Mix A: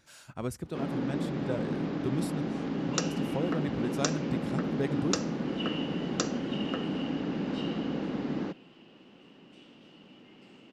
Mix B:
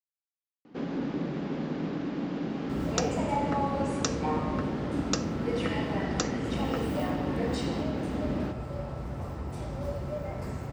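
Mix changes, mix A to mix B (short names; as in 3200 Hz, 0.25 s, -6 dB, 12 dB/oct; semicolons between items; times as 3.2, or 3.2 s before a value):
speech: muted; second sound: remove ladder band-pass 3000 Hz, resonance 85%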